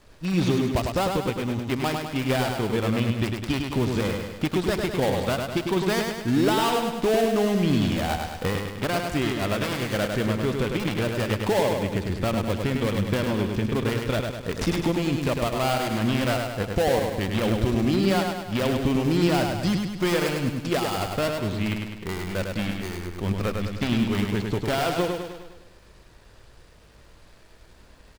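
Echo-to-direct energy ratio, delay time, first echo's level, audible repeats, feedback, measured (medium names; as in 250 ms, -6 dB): -3.0 dB, 102 ms, -4.5 dB, 6, 54%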